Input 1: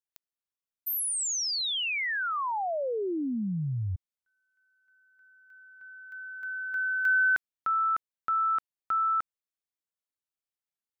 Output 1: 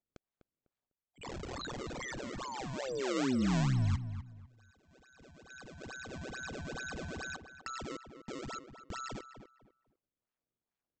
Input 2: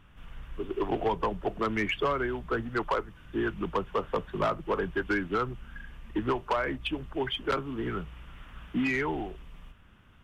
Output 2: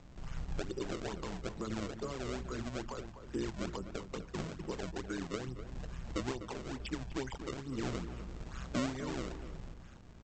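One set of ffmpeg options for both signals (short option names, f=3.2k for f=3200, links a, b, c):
-filter_complex "[0:a]alimiter=level_in=4.5dB:limit=-24dB:level=0:latency=1:release=499,volume=-4.5dB,acrossover=split=330[a][b];[b]acompressor=threshold=-44dB:ratio=6:attack=6.7:release=859:knee=2.83:detection=peak[c];[a][c]amix=inputs=2:normalize=0,aresample=16000,acrusher=samples=11:mix=1:aa=0.000001:lfo=1:lforange=17.6:lforate=2.3,aresample=44100,tremolo=f=130:d=0.621,asplit=2[d][e];[e]adelay=250,lowpass=f=2.1k:p=1,volume=-10dB,asplit=2[f][g];[g]adelay=250,lowpass=f=2.1k:p=1,volume=0.26,asplit=2[h][i];[i]adelay=250,lowpass=f=2.1k:p=1,volume=0.26[j];[d][f][h][j]amix=inputs=4:normalize=0,volume=5dB"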